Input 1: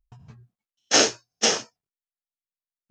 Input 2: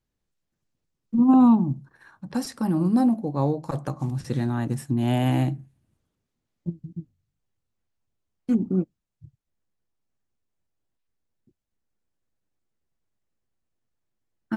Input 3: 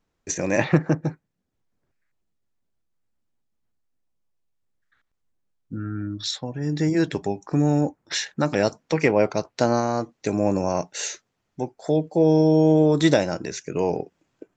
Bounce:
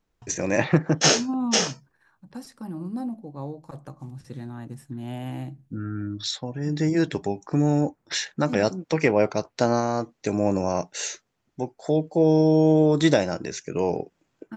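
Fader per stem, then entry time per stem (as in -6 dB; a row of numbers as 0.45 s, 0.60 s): -1.0 dB, -11.0 dB, -1.0 dB; 0.10 s, 0.00 s, 0.00 s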